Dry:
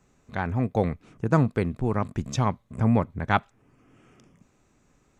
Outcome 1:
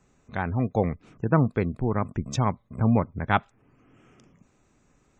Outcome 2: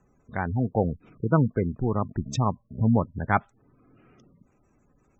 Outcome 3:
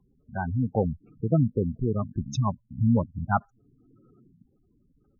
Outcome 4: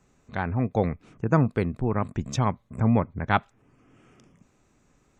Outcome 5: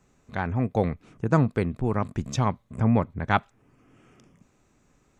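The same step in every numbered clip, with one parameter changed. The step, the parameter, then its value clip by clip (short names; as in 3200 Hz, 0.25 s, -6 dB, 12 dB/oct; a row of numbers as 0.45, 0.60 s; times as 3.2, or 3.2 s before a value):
spectral gate, under each frame's peak: -35, -20, -10, -45, -60 dB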